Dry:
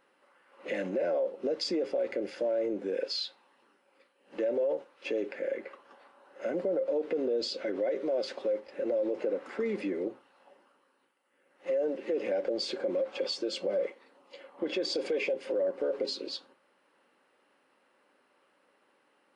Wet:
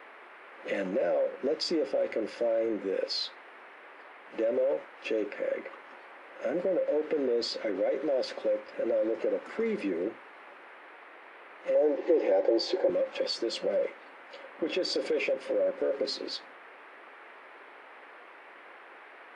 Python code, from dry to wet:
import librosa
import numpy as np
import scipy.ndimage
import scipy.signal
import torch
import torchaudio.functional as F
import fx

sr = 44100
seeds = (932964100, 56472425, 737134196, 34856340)

y = fx.dmg_noise_band(x, sr, seeds[0], low_hz=330.0, high_hz=2200.0, level_db=-52.0)
y = fx.cabinet(y, sr, low_hz=220.0, low_slope=24, high_hz=6900.0, hz=(230.0, 350.0, 500.0, 820.0, 1300.0, 2700.0), db=(-6, 8, 4, 9, -6, -4), at=(11.75, 12.9))
y = y * 10.0 ** (1.5 / 20.0)